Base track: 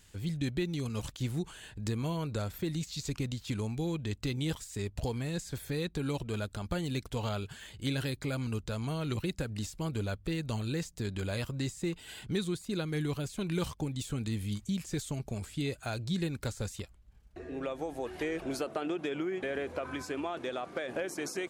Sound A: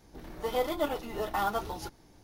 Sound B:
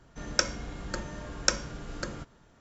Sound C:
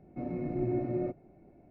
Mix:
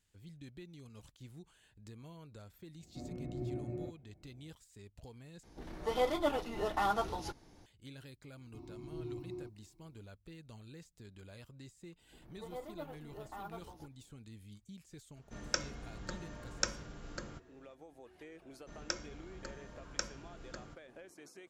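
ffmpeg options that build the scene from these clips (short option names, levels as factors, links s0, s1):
-filter_complex "[3:a]asplit=2[s0][s1];[1:a]asplit=2[s2][s3];[2:a]asplit=2[s4][s5];[0:a]volume=0.119[s6];[s0]equalizer=f=73:t=o:w=1.6:g=13[s7];[s2]lowpass=9200[s8];[s1]firequalizer=gain_entry='entry(100,0);entry(220,-17);entry(340,0);entry(510,-29);entry(1000,7);entry(1600,-22);entry(2400,-4);entry(3900,13)':delay=0.05:min_phase=1[s9];[s3]equalizer=f=6000:w=0.33:g=-9.5[s10];[s6]asplit=2[s11][s12];[s11]atrim=end=5.434[s13];[s8]atrim=end=2.23,asetpts=PTS-STARTPTS,volume=0.794[s14];[s12]atrim=start=7.656[s15];[s7]atrim=end=1.7,asetpts=PTS-STARTPTS,volume=0.266,afade=t=in:d=0.004:c=hsin,afade=t=out:st=1.696:d=0.004:c=hsin,adelay=2790[s16];[s9]atrim=end=1.7,asetpts=PTS-STARTPTS,volume=0.398,afade=t=in:d=0.004:c=hsin,afade=t=out:st=1.696:d=0.004:c=hsin,adelay=8370[s17];[s10]atrim=end=2.23,asetpts=PTS-STARTPTS,volume=0.178,afade=t=in:d=0.004:c=hsin,afade=t=out:st=2.226:d=0.004:c=hsin,adelay=11980[s18];[s4]atrim=end=2.6,asetpts=PTS-STARTPTS,volume=0.376,afade=t=in:d=0.004:c=hsin,afade=t=out:st=2.596:d=0.004:c=hsin,adelay=15150[s19];[s5]atrim=end=2.6,asetpts=PTS-STARTPTS,volume=0.237,afade=t=in:d=0.004:c=hsin,afade=t=out:st=2.596:d=0.004:c=hsin,adelay=18510[s20];[s13][s14]acrossfade=d=0.004:c1=hsin:c2=hsin[s21];[s21][s15]acrossfade=d=0.004:c1=hsin:c2=hsin[s22];[s22][s16][s17][s18][s19][s20]amix=inputs=6:normalize=0"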